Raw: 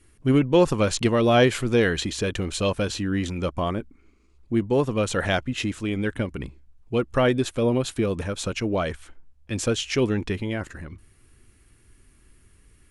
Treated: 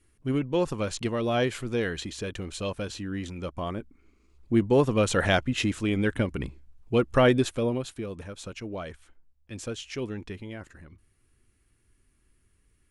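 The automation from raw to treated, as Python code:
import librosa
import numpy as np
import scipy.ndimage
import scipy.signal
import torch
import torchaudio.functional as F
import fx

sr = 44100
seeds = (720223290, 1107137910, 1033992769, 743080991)

y = fx.gain(x, sr, db=fx.line((3.48, -8.0), (4.56, 0.5), (7.37, 0.5), (7.99, -11.0)))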